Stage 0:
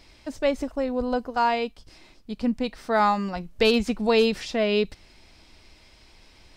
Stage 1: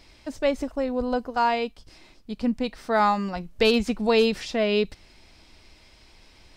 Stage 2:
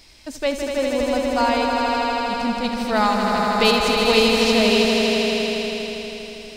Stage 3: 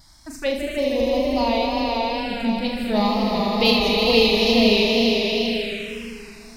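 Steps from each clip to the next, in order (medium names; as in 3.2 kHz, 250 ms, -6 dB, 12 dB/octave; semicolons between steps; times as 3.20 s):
no audible change
treble shelf 3.4 kHz +11 dB; on a send: echo with a slow build-up 80 ms, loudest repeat 5, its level -6 dB
wow and flutter 60 cents; touch-sensitive phaser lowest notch 430 Hz, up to 1.5 kHz, full sweep at -17.5 dBFS; flutter echo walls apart 6.6 m, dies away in 0.39 s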